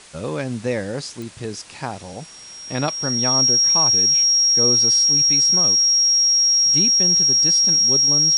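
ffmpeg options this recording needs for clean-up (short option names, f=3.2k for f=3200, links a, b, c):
-af "adeclick=t=4,bandreject=f=5.6k:w=30,afwtdn=0.0079"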